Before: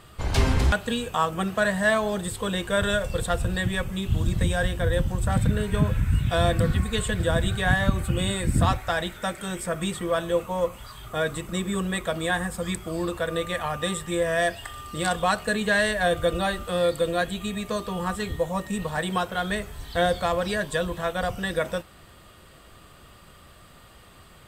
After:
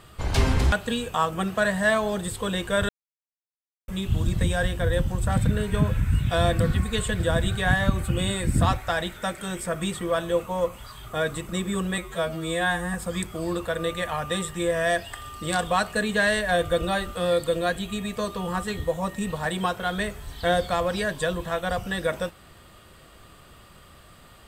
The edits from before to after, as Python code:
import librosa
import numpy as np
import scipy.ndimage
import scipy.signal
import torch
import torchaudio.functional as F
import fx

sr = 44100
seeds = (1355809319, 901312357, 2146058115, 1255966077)

y = fx.edit(x, sr, fx.silence(start_s=2.89, length_s=0.99),
    fx.stretch_span(start_s=11.98, length_s=0.48, factor=2.0), tone=tone)